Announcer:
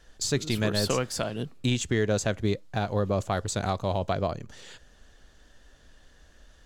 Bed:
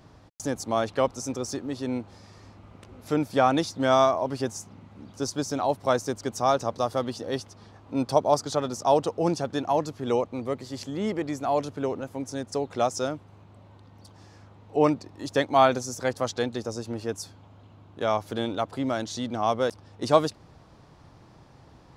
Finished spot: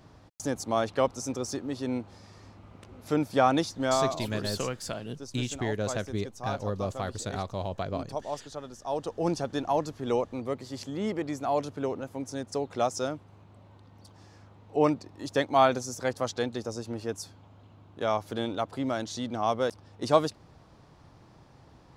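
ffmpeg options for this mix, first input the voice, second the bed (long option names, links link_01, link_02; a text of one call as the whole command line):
ffmpeg -i stem1.wav -i stem2.wav -filter_complex "[0:a]adelay=3700,volume=-5.5dB[link_01];[1:a]volume=9dB,afade=type=out:start_time=3.61:duration=0.64:silence=0.266073,afade=type=in:start_time=8.87:duration=0.45:silence=0.298538[link_02];[link_01][link_02]amix=inputs=2:normalize=0" out.wav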